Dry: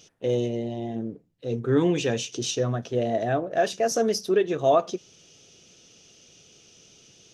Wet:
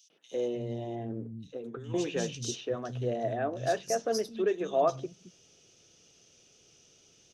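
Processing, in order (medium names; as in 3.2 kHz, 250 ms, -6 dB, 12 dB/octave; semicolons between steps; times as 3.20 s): 0.51–1.84 s: compressor with a negative ratio -31 dBFS, ratio -1; three bands offset in time highs, mids, lows 100/320 ms, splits 200/3200 Hz; trim -6 dB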